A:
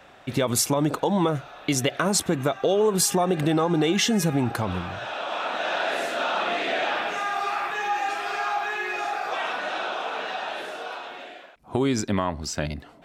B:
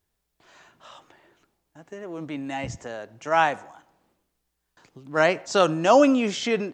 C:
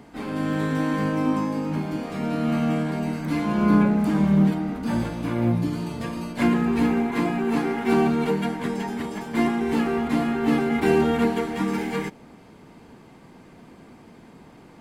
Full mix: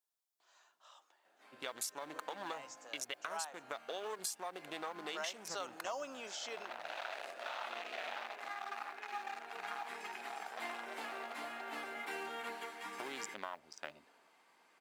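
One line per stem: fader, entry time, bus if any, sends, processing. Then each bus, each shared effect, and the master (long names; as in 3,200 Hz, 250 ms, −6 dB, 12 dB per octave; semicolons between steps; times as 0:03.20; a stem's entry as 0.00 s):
−7.0 dB, 1.25 s, no send, adaptive Wiener filter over 41 samples
−9.5 dB, 0.00 s, no send, parametric band 2,100 Hz −9 dB 1.2 octaves
0:09.48 −22.5 dB → 0:09.75 −11.5 dB, 1.25 s, no send, no processing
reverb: not used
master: high-pass filter 930 Hz 12 dB per octave; noise that follows the level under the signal 33 dB; downward compressor 6 to 1, threshold −38 dBFS, peak gain reduction 12 dB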